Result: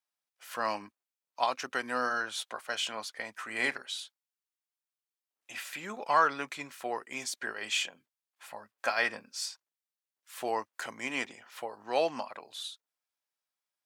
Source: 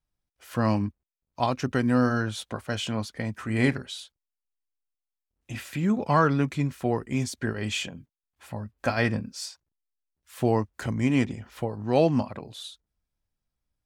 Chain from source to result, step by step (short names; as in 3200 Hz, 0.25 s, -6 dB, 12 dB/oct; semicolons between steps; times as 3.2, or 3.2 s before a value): HPF 770 Hz 12 dB/oct